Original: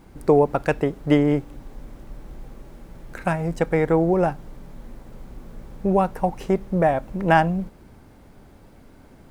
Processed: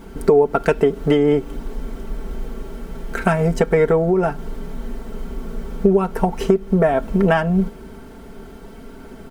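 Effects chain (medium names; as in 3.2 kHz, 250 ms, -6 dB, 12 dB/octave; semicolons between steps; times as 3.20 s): small resonant body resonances 380/1400/3100 Hz, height 9 dB; compression 8:1, threshold -21 dBFS, peak gain reduction 13 dB; comb 4.5 ms, depth 71%; trim +7.5 dB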